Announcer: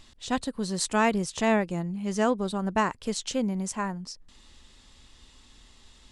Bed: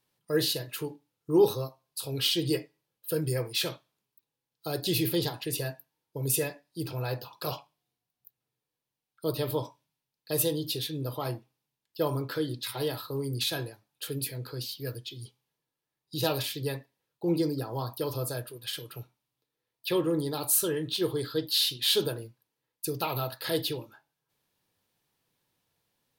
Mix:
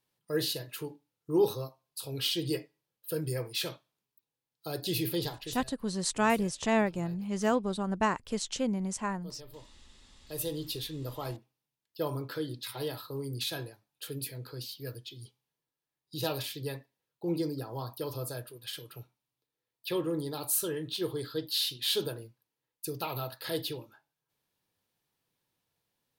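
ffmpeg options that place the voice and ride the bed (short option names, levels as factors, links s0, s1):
-filter_complex "[0:a]adelay=5250,volume=0.708[s0];[1:a]volume=3.76,afade=t=out:st=5.34:d=0.29:silence=0.158489,afade=t=in:st=10.16:d=0.44:silence=0.16788[s1];[s0][s1]amix=inputs=2:normalize=0"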